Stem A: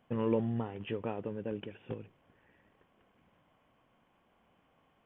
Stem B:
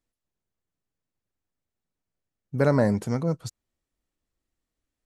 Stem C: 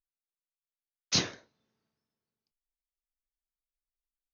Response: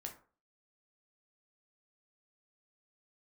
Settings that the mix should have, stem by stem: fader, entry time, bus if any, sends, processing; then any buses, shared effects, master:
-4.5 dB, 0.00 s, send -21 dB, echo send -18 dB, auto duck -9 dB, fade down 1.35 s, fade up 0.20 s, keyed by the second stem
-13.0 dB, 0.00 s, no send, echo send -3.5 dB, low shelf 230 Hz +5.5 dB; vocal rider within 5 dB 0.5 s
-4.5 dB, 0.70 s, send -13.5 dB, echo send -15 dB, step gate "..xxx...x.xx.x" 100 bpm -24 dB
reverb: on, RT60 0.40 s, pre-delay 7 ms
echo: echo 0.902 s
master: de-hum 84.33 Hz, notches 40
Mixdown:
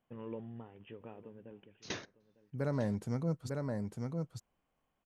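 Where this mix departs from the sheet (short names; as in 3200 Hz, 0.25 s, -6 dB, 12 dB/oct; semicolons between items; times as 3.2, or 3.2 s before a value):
stem A -4.5 dB -> -13.5 dB; master: missing de-hum 84.33 Hz, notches 40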